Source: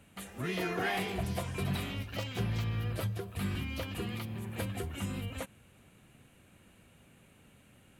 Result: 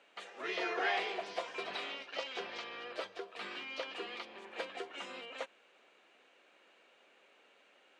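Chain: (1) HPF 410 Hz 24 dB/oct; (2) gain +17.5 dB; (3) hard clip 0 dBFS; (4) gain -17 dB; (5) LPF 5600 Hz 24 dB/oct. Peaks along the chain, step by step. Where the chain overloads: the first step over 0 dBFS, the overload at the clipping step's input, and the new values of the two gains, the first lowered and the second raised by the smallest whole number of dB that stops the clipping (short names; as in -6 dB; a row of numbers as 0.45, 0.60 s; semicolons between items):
-22.5, -5.0, -5.0, -22.0, -22.0 dBFS; no overload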